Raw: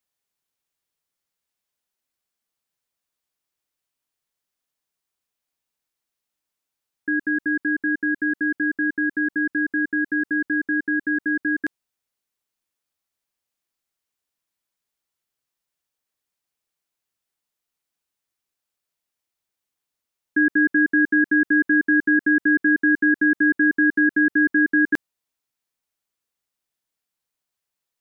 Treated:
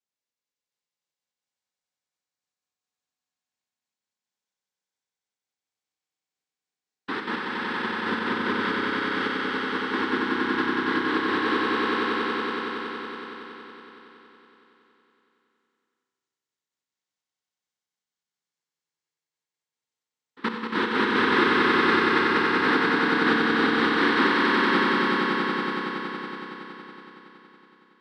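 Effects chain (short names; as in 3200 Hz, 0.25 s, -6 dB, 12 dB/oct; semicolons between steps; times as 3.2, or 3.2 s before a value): step gate "xxx....x..x.x." 149 bpm -24 dB; noise vocoder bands 6; swelling echo 93 ms, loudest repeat 5, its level -4.5 dB; Schroeder reverb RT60 1.6 s, combs from 31 ms, DRR 5 dB; gain -7.5 dB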